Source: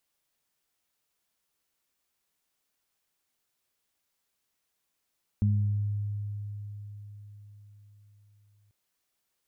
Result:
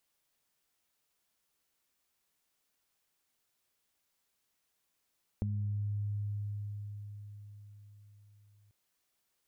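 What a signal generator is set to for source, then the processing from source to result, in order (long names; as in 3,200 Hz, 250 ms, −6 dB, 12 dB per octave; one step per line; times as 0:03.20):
harmonic partials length 3.29 s, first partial 103 Hz, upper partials −5 dB, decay 4.71 s, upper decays 0.85 s, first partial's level −21 dB
downward compressor, threshold −33 dBFS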